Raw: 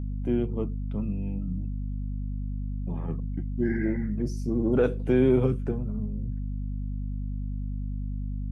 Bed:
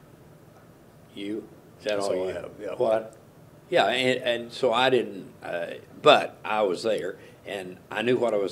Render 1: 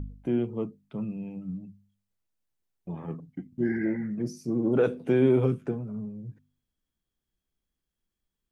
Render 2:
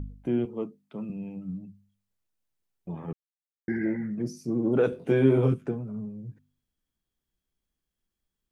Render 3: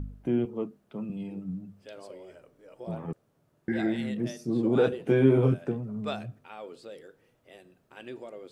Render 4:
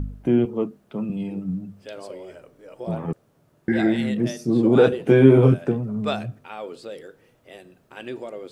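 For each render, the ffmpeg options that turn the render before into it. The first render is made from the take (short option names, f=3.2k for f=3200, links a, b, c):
-af "bandreject=f=50:t=h:w=4,bandreject=f=100:t=h:w=4,bandreject=f=150:t=h:w=4,bandreject=f=200:t=h:w=4,bandreject=f=250:t=h:w=4"
-filter_complex "[0:a]asettb=1/sr,asplit=3[a][b][c];[a]atrim=end=0.454[d];[b]atrim=start=0.45:end=1.1,asetpts=PTS-STARTPTS,afade=t=in:d=0.004:c=qsin,afade=t=out:st=0.646:d=0.004:c=qsin,highpass=210[e];[c]atrim=start=1.096[f];[d][e]acrossfade=d=0.004:c1=hsin:c2=qsin[g];[g][f]acrossfade=d=0.004:c1=qsin:c2=hsin,asettb=1/sr,asplit=3[h][i][j];[h]atrim=end=4.904[k];[i]atrim=start=4.9:end=5.54,asetpts=PTS-STARTPTS,afade=t=in:d=0.004:c=qsin,afade=t=out:st=0.636:d=0.004:c=qsin,asplit=2[l][m];[m]adelay=22,volume=-3.5dB[n];[l][n]amix=inputs=2:normalize=0,atrim=end_sample=28224[o];[j]atrim=start=5.536[p];[k][o]acrossfade=d=0.004:c1=hsin:c2=qsin[q];[q][p]acrossfade=d=0.004:c1=qsin:c2=hsin,asplit=3[r][s][t];[r]atrim=end=3.13,asetpts=PTS-STARTPTS,afade=t=out:st=3.126:d=0.004:c=hsin[u];[s]atrim=start=3.13:end=3.68,asetpts=PTS-STARTPTS,volume=0[v];[t]atrim=start=3.68,asetpts=PTS-STARTPTS,afade=t=in:d=0.004:c=hsin[w];[u][v][w]concat=n=3:v=0:a=1"
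-filter_complex "[1:a]volume=-18.5dB[a];[0:a][a]amix=inputs=2:normalize=0"
-af "volume=8dB"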